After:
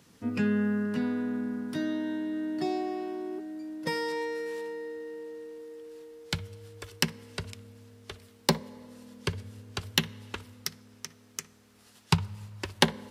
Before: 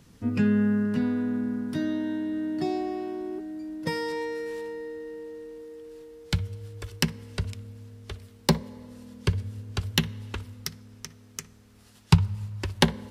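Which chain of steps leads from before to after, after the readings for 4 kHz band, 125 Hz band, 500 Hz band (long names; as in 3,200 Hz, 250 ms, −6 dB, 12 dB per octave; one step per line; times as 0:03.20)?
0.0 dB, −8.0 dB, −1.5 dB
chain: high-pass filter 290 Hz 6 dB per octave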